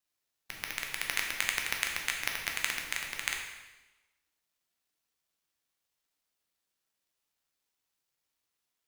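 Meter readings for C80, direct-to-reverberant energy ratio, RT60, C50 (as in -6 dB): 6.0 dB, 0.5 dB, 1.1 s, 4.0 dB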